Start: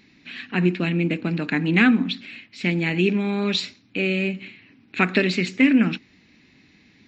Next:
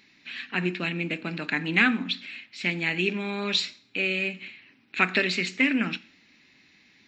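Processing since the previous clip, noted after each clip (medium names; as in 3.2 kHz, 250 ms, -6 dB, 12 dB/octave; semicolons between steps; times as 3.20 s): bass shelf 500 Hz -12 dB; two-slope reverb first 0.45 s, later 1.9 s, from -27 dB, DRR 15.5 dB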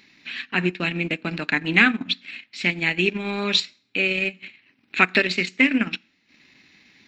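transient shaper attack +1 dB, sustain -12 dB; trim +4.5 dB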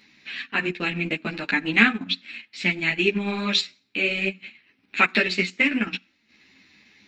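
three-phase chorus; trim +2 dB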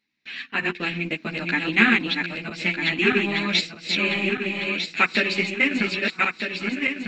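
backward echo that repeats 625 ms, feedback 63%, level -3 dB; gate with hold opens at -43 dBFS; trim -1 dB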